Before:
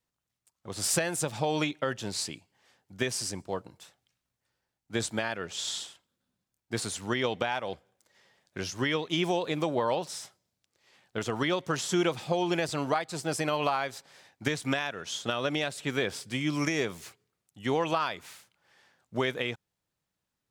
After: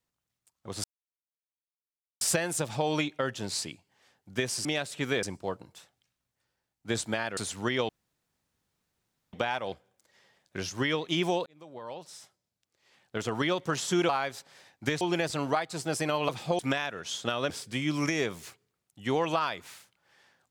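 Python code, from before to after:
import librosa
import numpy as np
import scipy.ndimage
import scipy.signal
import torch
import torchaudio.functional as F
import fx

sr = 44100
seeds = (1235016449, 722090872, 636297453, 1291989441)

y = fx.edit(x, sr, fx.insert_silence(at_s=0.84, length_s=1.37),
    fx.cut(start_s=5.42, length_s=1.4),
    fx.insert_room_tone(at_s=7.34, length_s=1.44),
    fx.fade_in_span(start_s=9.47, length_s=1.86),
    fx.swap(start_s=12.1, length_s=0.3, other_s=13.68, other_length_s=0.92),
    fx.move(start_s=15.51, length_s=0.58, to_s=3.28), tone=tone)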